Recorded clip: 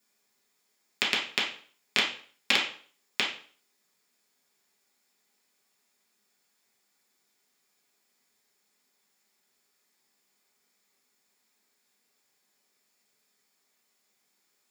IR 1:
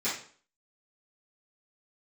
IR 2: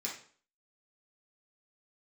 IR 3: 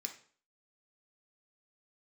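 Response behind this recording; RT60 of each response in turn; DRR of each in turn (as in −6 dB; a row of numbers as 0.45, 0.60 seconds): 2; 0.45, 0.45, 0.45 seconds; −14.5, −5.0, 3.0 decibels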